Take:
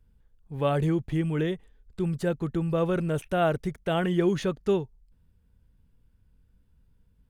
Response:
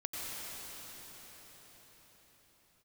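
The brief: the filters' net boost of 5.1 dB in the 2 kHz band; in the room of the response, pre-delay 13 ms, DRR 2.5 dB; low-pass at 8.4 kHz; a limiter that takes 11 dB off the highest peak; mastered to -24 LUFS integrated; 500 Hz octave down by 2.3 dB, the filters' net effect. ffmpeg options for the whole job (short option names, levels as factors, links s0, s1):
-filter_complex "[0:a]lowpass=8400,equalizer=f=500:t=o:g=-3.5,equalizer=f=2000:t=o:g=7.5,alimiter=limit=0.0631:level=0:latency=1,asplit=2[s0][s1];[1:a]atrim=start_sample=2205,adelay=13[s2];[s1][s2]afir=irnorm=-1:irlink=0,volume=0.501[s3];[s0][s3]amix=inputs=2:normalize=0,volume=2.37"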